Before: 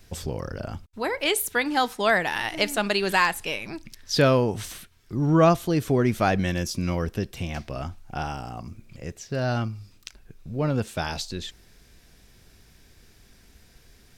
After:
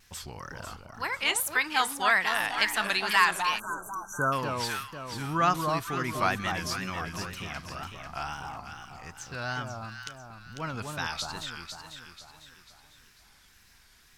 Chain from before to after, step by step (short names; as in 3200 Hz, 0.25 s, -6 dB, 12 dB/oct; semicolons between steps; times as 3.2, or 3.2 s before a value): resonant low shelf 760 Hz -10.5 dB, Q 1.5; echo with dull and thin repeats by turns 0.248 s, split 1200 Hz, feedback 65%, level -3.5 dB; wow and flutter 100 cents; spectral delete 3.59–4.33, 1600–5800 Hz; gain -2 dB